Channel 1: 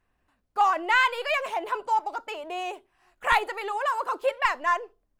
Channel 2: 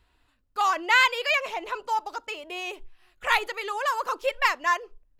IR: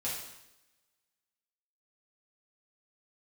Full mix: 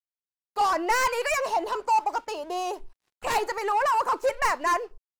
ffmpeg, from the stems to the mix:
-filter_complex "[0:a]equalizer=f=4.4k:w=0.65:g=11.5,asoftclip=type=tanh:threshold=-21dB,volume=-0.5dB,asplit=2[a][b];[1:a]equalizer=f=910:t=o:w=0.44:g=8,asoftclip=type=tanh:threshold=-26.5dB,volume=2.5dB[c];[b]apad=whole_len=228880[d];[c][d]sidechaingate=range=-33dB:threshold=-54dB:ratio=16:detection=peak[e];[a][e]amix=inputs=2:normalize=0,equalizer=f=3.4k:w=3.5:g=-12.5,aeval=exprs='sgn(val(0))*max(abs(val(0))-0.00178,0)':c=same"

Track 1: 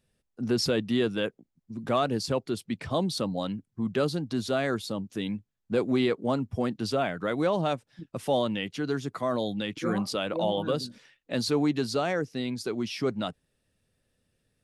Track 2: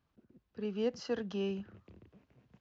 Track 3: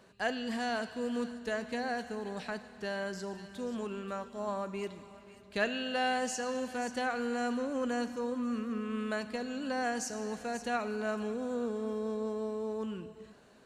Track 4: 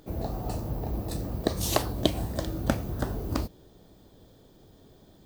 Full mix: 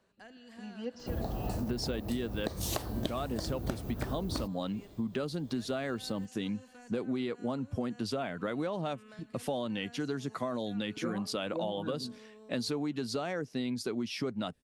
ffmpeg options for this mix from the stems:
-filter_complex "[0:a]equalizer=f=240:t=o:w=0.29:g=3.5,adelay=1200,volume=-1dB[a];[1:a]aecho=1:1:3.6:0.98,volume=-8dB[b];[2:a]acrossover=split=330|1400[c][d][e];[c]acompressor=threshold=-45dB:ratio=4[f];[d]acompressor=threshold=-45dB:ratio=4[g];[e]acompressor=threshold=-45dB:ratio=4[h];[f][g][h]amix=inputs=3:normalize=0,volume=-12.5dB[i];[3:a]adelay=1000,volume=0dB[j];[a][b][i][j]amix=inputs=4:normalize=0,acompressor=threshold=-30dB:ratio=10"

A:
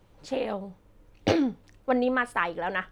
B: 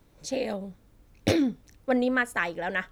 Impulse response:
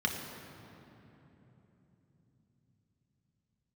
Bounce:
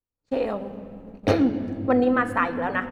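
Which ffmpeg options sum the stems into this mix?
-filter_complex "[0:a]bass=f=250:g=5,treble=f=4k:g=-5,volume=1.5dB,asplit=3[a][b][c];[b]volume=-13dB[d];[1:a]adelay=1.4,volume=-9.5dB[e];[c]apad=whole_len=128535[f];[e][f]sidechaingate=range=-33dB:threshold=-41dB:ratio=16:detection=peak[g];[2:a]atrim=start_sample=2205[h];[d][h]afir=irnorm=-1:irlink=0[i];[a][g][i]amix=inputs=3:normalize=0,agate=range=-40dB:threshold=-41dB:ratio=16:detection=peak"

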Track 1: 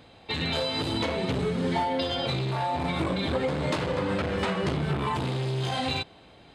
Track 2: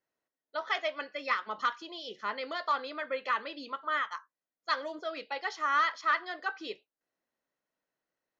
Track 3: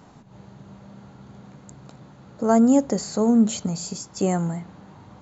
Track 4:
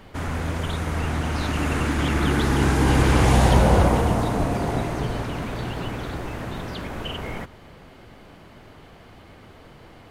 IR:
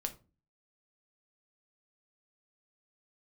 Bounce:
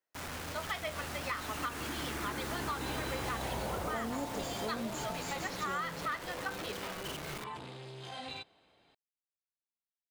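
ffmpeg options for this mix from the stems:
-filter_complex "[0:a]adelay=2400,volume=-13dB[a];[1:a]volume=-4.5dB,asplit=2[b][c];[c]volume=-9.5dB[d];[2:a]adelay=1450,volume=-13dB[e];[3:a]acrusher=bits=4:mix=0:aa=0.000001,volume=-11.5dB[f];[4:a]atrim=start_sample=2205[g];[d][g]afir=irnorm=-1:irlink=0[h];[a][b][e][f][h]amix=inputs=5:normalize=0,lowshelf=f=250:g=-10,acompressor=threshold=-33dB:ratio=6"

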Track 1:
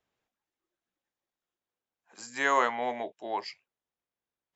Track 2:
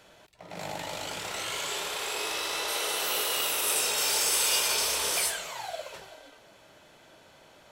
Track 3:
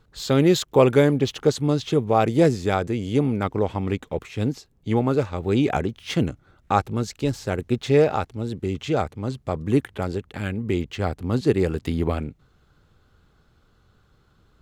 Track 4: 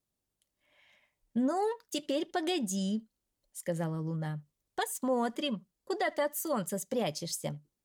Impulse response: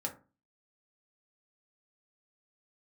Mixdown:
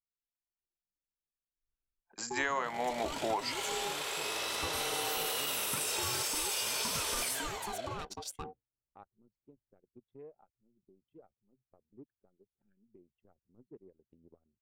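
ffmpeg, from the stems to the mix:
-filter_complex "[0:a]dynaudnorm=f=160:g=5:m=15dB,volume=-7.5dB[a];[1:a]agate=range=-33dB:threshold=-42dB:ratio=3:detection=peak,alimiter=limit=-19.5dB:level=0:latency=1,adelay=2050,volume=-4dB[b];[2:a]highpass=f=170:p=1,acompressor=threshold=-48dB:ratio=1.5,adelay=2250,volume=-19.5dB[c];[3:a]acompressor=threshold=-34dB:ratio=6,aeval=exprs='val(0)*sin(2*PI*610*n/s)':c=same,adelay=950,volume=-1dB[d];[a][b][c][d]amix=inputs=4:normalize=0,anlmdn=0.0398,acompressor=threshold=-29dB:ratio=12"

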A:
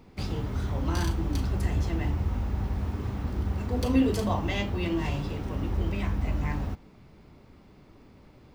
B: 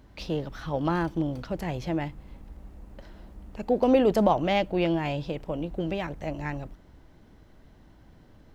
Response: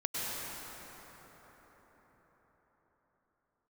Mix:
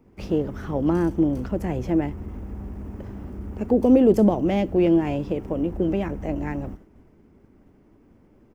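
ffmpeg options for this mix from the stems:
-filter_complex "[0:a]volume=25dB,asoftclip=hard,volume=-25dB,volume=-8.5dB[a];[1:a]agate=range=-33dB:threshold=-45dB:ratio=3:detection=peak,volume=-1,adelay=16,volume=1dB[b];[a][b]amix=inputs=2:normalize=0,equalizer=f=160:t=o:w=0.67:g=-4,equalizer=f=400:t=o:w=0.67:g=4,equalizer=f=4k:t=o:w=0.67:g=-12,acrossover=split=490|3000[c][d][e];[d]acompressor=threshold=-32dB:ratio=3[f];[c][f][e]amix=inputs=3:normalize=0,equalizer=f=220:t=o:w=1.6:g=8"

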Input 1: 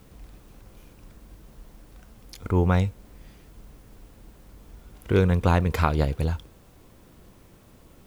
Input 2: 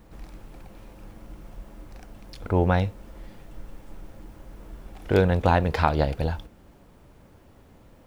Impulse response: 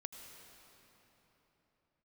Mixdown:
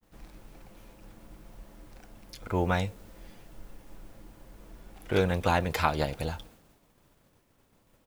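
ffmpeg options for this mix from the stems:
-filter_complex "[0:a]highpass=1.1k,adynamicequalizer=threshold=0.00501:dfrequency=1900:dqfactor=0.7:tfrequency=1900:tqfactor=0.7:attack=5:release=100:ratio=0.375:range=2.5:mode=boostabove:tftype=highshelf,volume=-4dB[a];[1:a]adelay=7.4,volume=-6dB,asplit=2[b][c];[c]volume=-21.5dB[d];[2:a]atrim=start_sample=2205[e];[d][e]afir=irnorm=-1:irlink=0[f];[a][b][f]amix=inputs=3:normalize=0,agate=range=-33dB:threshold=-50dB:ratio=3:detection=peak,equalizer=f=62:t=o:w=0.66:g=-8"

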